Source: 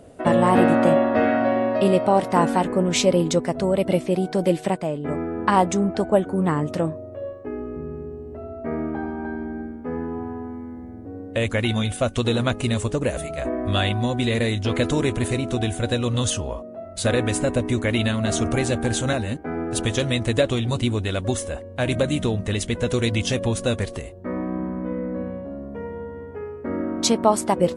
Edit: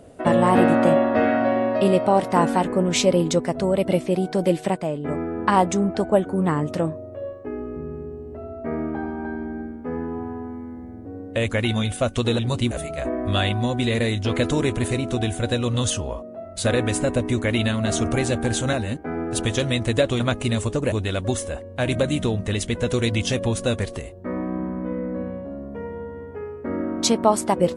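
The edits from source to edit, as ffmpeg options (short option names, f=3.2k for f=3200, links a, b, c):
-filter_complex "[0:a]asplit=5[a][b][c][d][e];[a]atrim=end=12.392[f];[b]atrim=start=20.598:end=20.922[g];[c]atrim=start=13.108:end=20.602[h];[d]atrim=start=12.388:end=13.112[i];[e]atrim=start=20.918[j];[f][g]acrossfade=d=0.004:c1=hsin:c2=hsin[k];[k][h]acrossfade=d=0.004:c1=hsin:c2=hsin[l];[l][i]acrossfade=d=0.004:c1=hsin:c2=hsin[m];[m][j]acrossfade=d=0.004:c1=hsin:c2=hsin"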